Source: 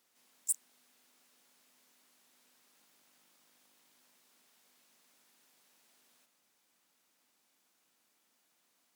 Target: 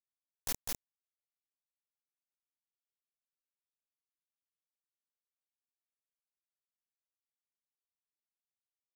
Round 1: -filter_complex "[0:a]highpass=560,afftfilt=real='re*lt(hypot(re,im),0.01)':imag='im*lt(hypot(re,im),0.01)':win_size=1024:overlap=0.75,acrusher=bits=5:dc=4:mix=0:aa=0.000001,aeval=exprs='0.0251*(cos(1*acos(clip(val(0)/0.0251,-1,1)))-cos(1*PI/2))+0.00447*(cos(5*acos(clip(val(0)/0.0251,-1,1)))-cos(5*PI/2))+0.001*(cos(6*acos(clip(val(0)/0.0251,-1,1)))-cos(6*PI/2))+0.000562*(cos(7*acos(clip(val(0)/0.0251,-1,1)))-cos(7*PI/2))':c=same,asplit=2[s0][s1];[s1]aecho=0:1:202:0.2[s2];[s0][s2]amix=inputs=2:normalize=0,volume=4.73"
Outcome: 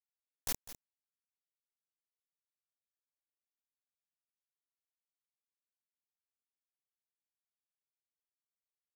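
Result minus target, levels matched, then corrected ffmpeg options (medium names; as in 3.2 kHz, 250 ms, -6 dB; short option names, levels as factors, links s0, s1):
echo-to-direct -12 dB
-filter_complex "[0:a]highpass=560,afftfilt=real='re*lt(hypot(re,im),0.01)':imag='im*lt(hypot(re,im),0.01)':win_size=1024:overlap=0.75,acrusher=bits=5:dc=4:mix=0:aa=0.000001,aeval=exprs='0.0251*(cos(1*acos(clip(val(0)/0.0251,-1,1)))-cos(1*PI/2))+0.00447*(cos(5*acos(clip(val(0)/0.0251,-1,1)))-cos(5*PI/2))+0.001*(cos(6*acos(clip(val(0)/0.0251,-1,1)))-cos(6*PI/2))+0.000562*(cos(7*acos(clip(val(0)/0.0251,-1,1)))-cos(7*PI/2))':c=same,asplit=2[s0][s1];[s1]aecho=0:1:202:0.794[s2];[s0][s2]amix=inputs=2:normalize=0,volume=4.73"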